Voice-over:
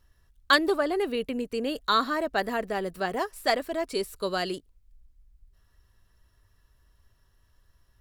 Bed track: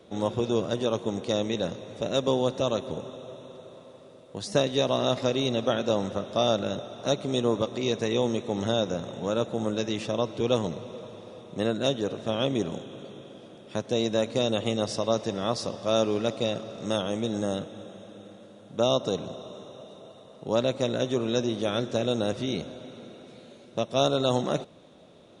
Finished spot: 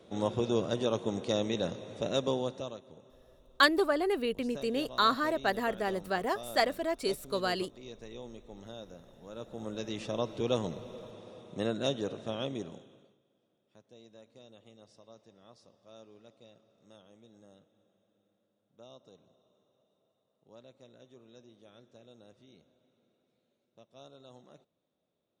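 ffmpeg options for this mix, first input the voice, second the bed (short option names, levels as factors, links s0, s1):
-filter_complex "[0:a]adelay=3100,volume=0.75[s0];[1:a]volume=3.55,afade=t=out:st=2.09:d=0.71:silence=0.149624,afade=t=in:st=9.28:d=0.94:silence=0.188365,afade=t=out:st=12:d=1.18:silence=0.0630957[s1];[s0][s1]amix=inputs=2:normalize=0"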